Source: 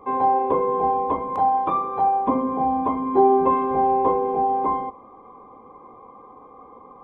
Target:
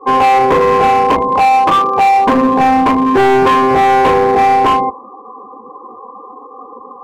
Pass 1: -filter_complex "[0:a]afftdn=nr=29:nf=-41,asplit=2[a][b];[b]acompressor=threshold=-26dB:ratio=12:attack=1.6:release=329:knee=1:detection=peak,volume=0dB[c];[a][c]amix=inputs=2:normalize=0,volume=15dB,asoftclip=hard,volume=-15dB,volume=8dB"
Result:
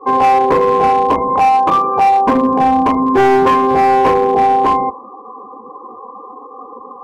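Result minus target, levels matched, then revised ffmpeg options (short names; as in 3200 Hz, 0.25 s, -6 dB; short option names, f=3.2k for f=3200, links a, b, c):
compressor: peak gain reduction +10 dB
-filter_complex "[0:a]afftdn=nr=29:nf=-41,asplit=2[a][b];[b]acompressor=threshold=-15dB:ratio=12:attack=1.6:release=329:knee=1:detection=peak,volume=0dB[c];[a][c]amix=inputs=2:normalize=0,volume=15dB,asoftclip=hard,volume=-15dB,volume=8dB"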